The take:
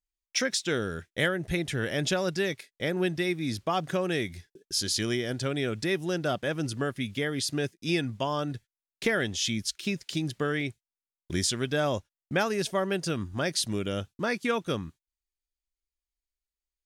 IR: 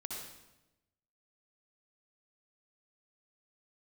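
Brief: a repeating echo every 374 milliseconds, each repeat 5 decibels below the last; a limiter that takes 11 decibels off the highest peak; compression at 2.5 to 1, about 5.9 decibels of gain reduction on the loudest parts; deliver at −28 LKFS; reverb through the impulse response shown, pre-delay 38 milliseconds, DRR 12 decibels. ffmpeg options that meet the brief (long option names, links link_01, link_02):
-filter_complex "[0:a]acompressor=threshold=-30dB:ratio=2.5,alimiter=level_in=4.5dB:limit=-24dB:level=0:latency=1,volume=-4.5dB,aecho=1:1:374|748|1122|1496|1870|2244|2618:0.562|0.315|0.176|0.0988|0.0553|0.031|0.0173,asplit=2[link_01][link_02];[1:a]atrim=start_sample=2205,adelay=38[link_03];[link_02][link_03]afir=irnorm=-1:irlink=0,volume=-11.5dB[link_04];[link_01][link_04]amix=inputs=2:normalize=0,volume=9dB"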